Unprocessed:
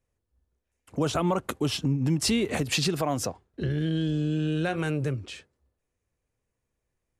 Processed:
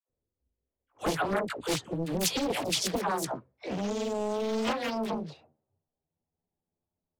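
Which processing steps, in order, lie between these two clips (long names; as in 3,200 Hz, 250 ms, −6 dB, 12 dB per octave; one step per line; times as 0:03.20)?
pitch glide at a constant tempo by +10 semitones starting unshifted
low-pass that shuts in the quiet parts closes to 590 Hz, open at −25 dBFS
low-shelf EQ 170 Hz −10 dB
all-pass dispersion lows, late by 95 ms, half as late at 660 Hz
highs frequency-modulated by the lows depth 0.86 ms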